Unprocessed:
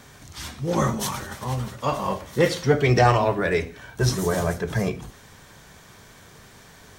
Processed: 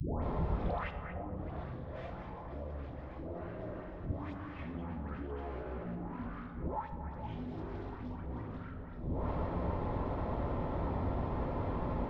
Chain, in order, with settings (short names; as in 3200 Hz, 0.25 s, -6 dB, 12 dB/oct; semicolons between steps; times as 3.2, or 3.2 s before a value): tube stage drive 31 dB, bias 0.75; low-pass opened by the level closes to 1300 Hz, open at -21.5 dBFS; in parallel at -1.5 dB: limiter -39 dBFS, peak gain reduction 11.5 dB; on the sum: flipped gate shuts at -32 dBFS, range -32 dB; dispersion highs, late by 0.134 s, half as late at 1400 Hz; on a send: delay with a stepping band-pass 0.134 s, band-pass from 2900 Hz, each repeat -1.4 oct, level -10.5 dB; on the sum: FDN reverb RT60 0.74 s, low-frequency decay 1.25×, high-frequency decay 0.5×, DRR 5.5 dB; speed mistake 78 rpm record played at 45 rpm; three-band squash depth 70%; gain +13 dB